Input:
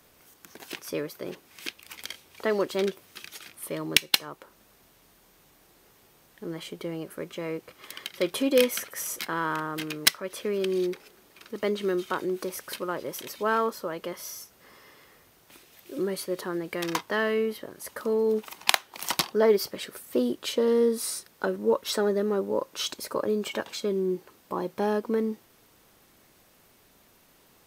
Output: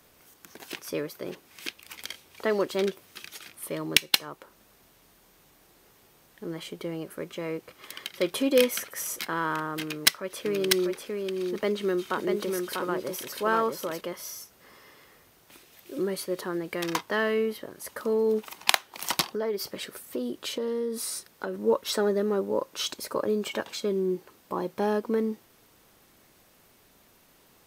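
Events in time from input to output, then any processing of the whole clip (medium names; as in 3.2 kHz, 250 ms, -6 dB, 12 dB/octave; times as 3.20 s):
9.81–14.01 s: delay 644 ms -4 dB
19.30–21.58 s: compression 3:1, threshold -29 dBFS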